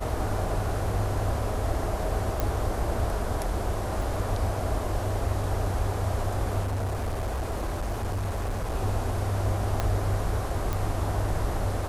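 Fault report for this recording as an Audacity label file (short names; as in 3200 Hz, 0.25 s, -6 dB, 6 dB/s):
2.400000	2.400000	pop
4.020000	4.020000	gap 2.8 ms
6.630000	8.750000	clipped -25.5 dBFS
9.800000	9.800000	pop -12 dBFS
10.730000	10.730000	pop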